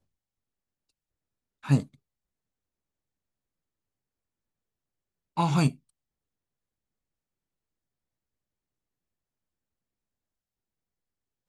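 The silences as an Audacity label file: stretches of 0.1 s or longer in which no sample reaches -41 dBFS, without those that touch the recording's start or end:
1.840000	5.370000	silence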